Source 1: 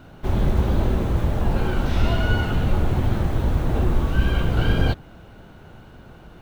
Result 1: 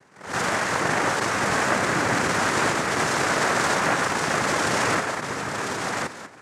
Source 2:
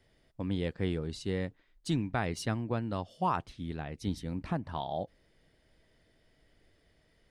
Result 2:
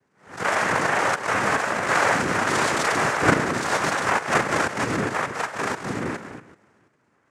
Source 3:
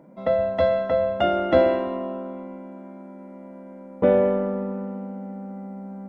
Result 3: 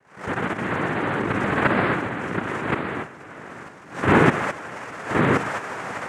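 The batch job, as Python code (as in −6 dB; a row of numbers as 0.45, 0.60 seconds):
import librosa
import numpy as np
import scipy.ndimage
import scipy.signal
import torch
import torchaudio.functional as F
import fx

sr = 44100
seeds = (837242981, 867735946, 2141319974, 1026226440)

p1 = fx.octave_mirror(x, sr, pivot_hz=480.0)
p2 = fx.quant_dither(p1, sr, seeds[0], bits=6, dither='none')
p3 = p1 + (p2 * 10.0 ** (-6.5 / 20.0))
p4 = fx.low_shelf(p3, sr, hz=130.0, db=-7.5)
p5 = fx.rev_spring(p4, sr, rt60_s=1.0, pass_ms=(33, 41), chirp_ms=70, drr_db=-3.5)
p6 = fx.level_steps(p5, sr, step_db=11)
p7 = scipy.signal.sosfilt(scipy.signal.butter(4, 1800.0, 'lowpass', fs=sr, output='sos'), p6)
p8 = fx.peak_eq(p7, sr, hz=190.0, db=-12.5, octaves=1.3)
p9 = p8 + fx.echo_single(p8, sr, ms=1073, db=-3.5, dry=0)
p10 = fx.noise_vocoder(p9, sr, seeds[1], bands=3)
p11 = fx.pre_swell(p10, sr, db_per_s=140.0)
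y = p11 * 10.0 ** (-24 / 20.0) / np.sqrt(np.mean(np.square(p11)))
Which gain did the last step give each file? +3.5, +13.5, +0.5 decibels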